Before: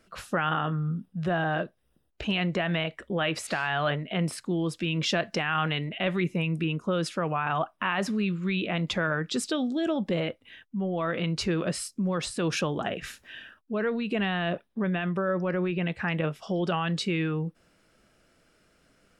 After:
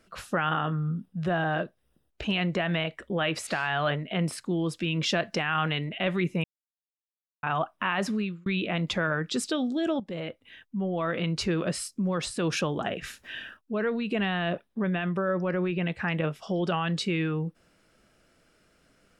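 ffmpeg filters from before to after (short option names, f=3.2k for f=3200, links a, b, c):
-filter_complex "[0:a]asplit=7[a][b][c][d][e][f][g];[a]atrim=end=6.44,asetpts=PTS-STARTPTS,afade=t=out:st=6.436:d=0.004:c=hsin[h];[b]atrim=start=6.44:end=7.43,asetpts=PTS-STARTPTS,volume=0[i];[c]atrim=start=7.43:end=8.46,asetpts=PTS-STARTPTS,afade=t=in:d=0.004:c=hsin,afade=t=out:st=0.72:d=0.31[j];[d]atrim=start=8.46:end=10,asetpts=PTS-STARTPTS,afade=t=in:d=0.004:c=hsin,afade=t=out:st=1.536:d=0.004:c=hsin:silence=0.237137[k];[e]atrim=start=10:end=13.242,asetpts=PTS-STARTPTS,afade=t=in:d=0.61:silence=0.237137[l];[f]atrim=start=13.238:end=13.572,asetpts=PTS-STARTPTS,volume=5dB[m];[g]atrim=start=13.568[n];[h][i][j][k][l]concat=n=5:v=0:a=1[o];[o][m]acrossfade=d=0.004:c1=hsin:c2=hsin[p];[p][n]acrossfade=d=0.004:c1=hsin:c2=hsin"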